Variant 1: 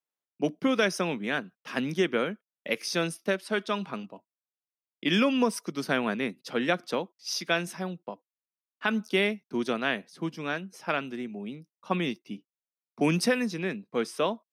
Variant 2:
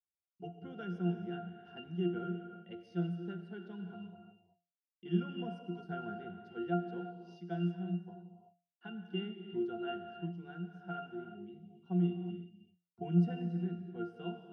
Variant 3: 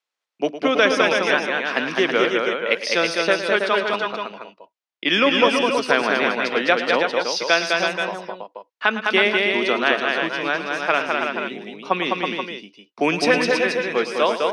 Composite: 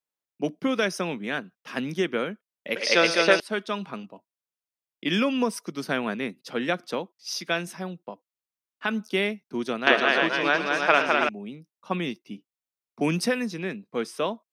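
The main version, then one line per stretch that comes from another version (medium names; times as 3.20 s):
1
2.76–3.40 s: from 3
9.87–11.29 s: from 3
not used: 2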